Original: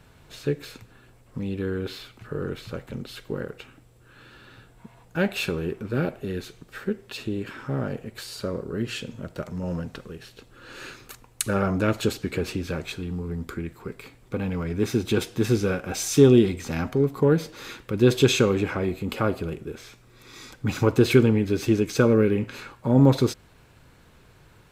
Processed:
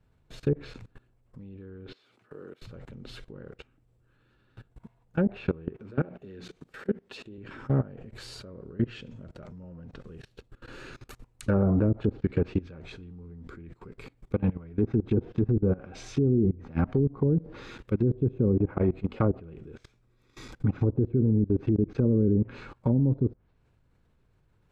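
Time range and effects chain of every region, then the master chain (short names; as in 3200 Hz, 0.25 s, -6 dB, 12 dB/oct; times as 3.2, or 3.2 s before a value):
1.92–2.62 HPF 300 Hz + compressor 2.5:1, threshold -45 dBFS
5.76–7.38 HPF 190 Hz 6 dB/oct + notches 60/120/180/240/300 Hz
whole clip: treble ducked by the level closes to 360 Hz, closed at -17.5 dBFS; tilt -2 dB/oct; level quantiser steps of 22 dB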